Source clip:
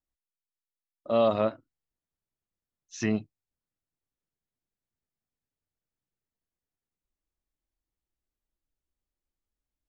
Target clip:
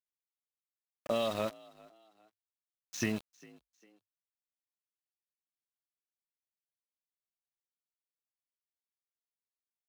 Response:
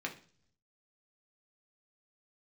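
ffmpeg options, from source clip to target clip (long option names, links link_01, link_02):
-filter_complex "[0:a]acrossover=split=2300[link_01][link_02];[link_01]acompressor=threshold=-30dB:ratio=20[link_03];[link_03][link_02]amix=inputs=2:normalize=0,aeval=exprs='val(0)*gte(abs(val(0)),0.00841)':channel_layout=same,asplit=3[link_04][link_05][link_06];[link_05]adelay=401,afreqshift=48,volume=-23.5dB[link_07];[link_06]adelay=802,afreqshift=96,volume=-32.6dB[link_08];[link_04][link_07][link_08]amix=inputs=3:normalize=0,volume=1.5dB"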